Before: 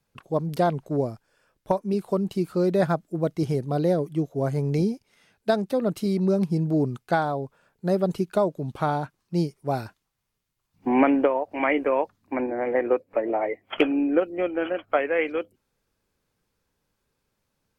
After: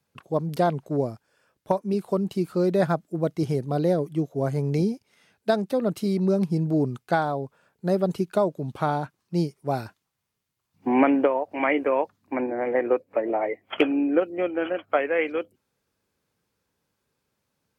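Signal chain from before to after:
high-pass filter 78 Hz

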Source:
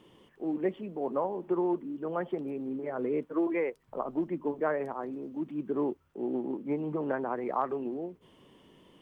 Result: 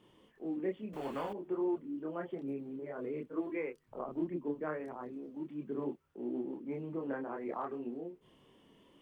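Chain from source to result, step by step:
dynamic equaliser 850 Hz, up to −5 dB, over −45 dBFS, Q 1.1
multi-voice chorus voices 2, 0.6 Hz, delay 27 ms, depth 2.3 ms
0:00.93–0:01.33: every bin compressed towards the loudest bin 2 to 1
level −2 dB

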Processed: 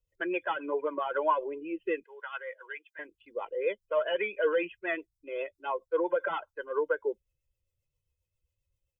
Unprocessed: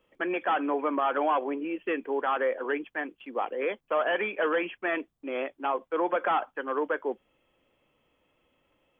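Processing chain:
spectral dynamics exaggerated over time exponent 1.5
0:02.03–0:02.99: high-pass filter 1,400 Hz 12 dB per octave
comb filter 2 ms, depth 95%
rotating-speaker cabinet horn 7.5 Hz

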